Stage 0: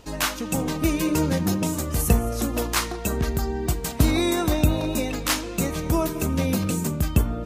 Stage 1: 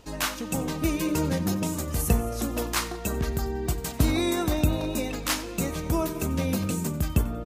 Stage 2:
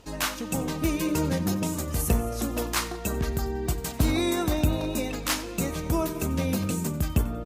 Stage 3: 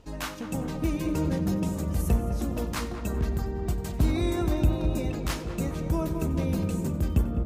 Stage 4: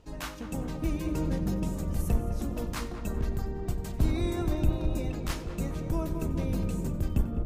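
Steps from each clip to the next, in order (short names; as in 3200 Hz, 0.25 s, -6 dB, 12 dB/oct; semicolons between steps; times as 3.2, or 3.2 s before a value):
feedback echo 92 ms, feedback 33%, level -18.5 dB; gain -3.5 dB
one-sided clip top -16.5 dBFS
tilt -1.5 dB/oct; darkening echo 0.205 s, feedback 75%, low-pass 1200 Hz, level -7.5 dB; gain -5 dB
octaver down 2 oct, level -2 dB; gain -4 dB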